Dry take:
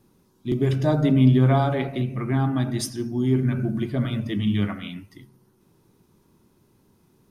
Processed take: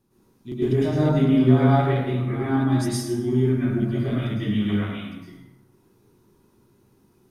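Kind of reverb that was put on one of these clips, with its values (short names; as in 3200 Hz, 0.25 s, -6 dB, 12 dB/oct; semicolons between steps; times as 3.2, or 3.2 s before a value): plate-style reverb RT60 1 s, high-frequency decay 0.65×, pre-delay 95 ms, DRR -9.5 dB; gain -9 dB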